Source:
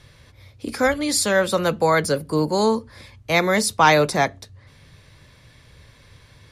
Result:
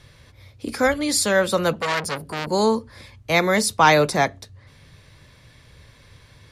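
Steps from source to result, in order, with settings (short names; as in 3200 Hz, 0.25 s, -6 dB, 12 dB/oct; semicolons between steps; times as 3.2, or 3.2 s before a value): 1.73–2.47 core saturation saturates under 2800 Hz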